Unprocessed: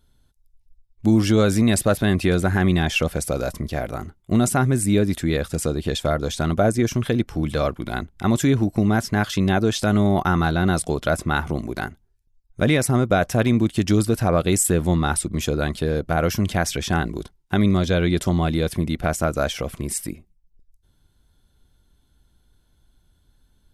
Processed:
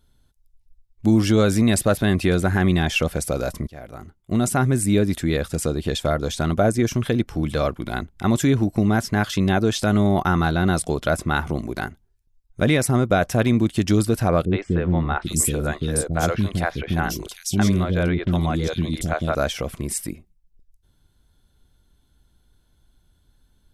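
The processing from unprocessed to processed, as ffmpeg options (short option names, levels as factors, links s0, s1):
-filter_complex "[0:a]asettb=1/sr,asplit=3[s0][s1][s2];[s0]atrim=end=14.454[s3];[s1]atrim=start=14.45:end=19.35,asetpts=PTS-STARTPTS,afade=t=in:d=0.004:c=qsin,afade=t=out:st=4.896:d=0.004:c=qsin,acrossover=split=400|3100[s4][s5][s6];[s5]adelay=60[s7];[s6]adelay=800[s8];[s4][s7][s8]amix=inputs=3:normalize=0,atrim=end_sample=216090[s9];[s2]atrim=start=19.346[s10];[s3][s9]acrossfade=d=0.004:c1=hsin:c2=qsin[s11];[s11][s10]acrossfade=d=0.004:c1=qsin:c2=hsin,asplit=2[s12][s13];[s12]atrim=end=3.67,asetpts=PTS-STARTPTS,afade=t=out:st=3.666:d=0.004:c=hsin:silence=0.125893[s14];[s13]atrim=start=3.67,asetpts=PTS-STARTPTS,afade=t=in:d=0.98:silence=0.125893[s15];[s14][s15]concat=n=2:v=0:a=1"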